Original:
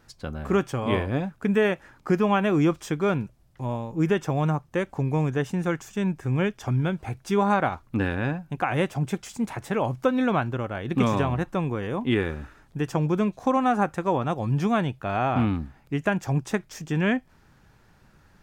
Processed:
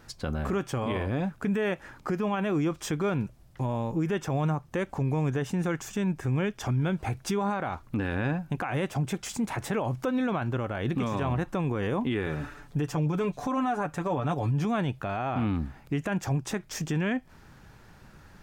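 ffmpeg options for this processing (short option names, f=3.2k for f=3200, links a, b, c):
-filter_complex "[0:a]asettb=1/sr,asplit=3[a][b][c];[a]atrim=end=12.264[d];[b]atrim=start=12.26:end=14.65,asetpts=PTS-STARTPTS,afade=t=in:d=0.004:c=qsin,afade=t=out:st=2.386:d=0.004:c=qsin,aecho=1:1:6.9:0.65,atrim=end_sample=105399[e];[c]atrim=start=14.646[f];[d][e]acrossfade=d=0.004:c1=hsin:c2=qsin[g];[g][f]acrossfade=d=0.004:c1=qsin:c2=hsin,acompressor=threshold=-28dB:ratio=4,alimiter=level_in=1.5dB:limit=-24dB:level=0:latency=1:release=16,volume=-1.5dB,volume=5dB"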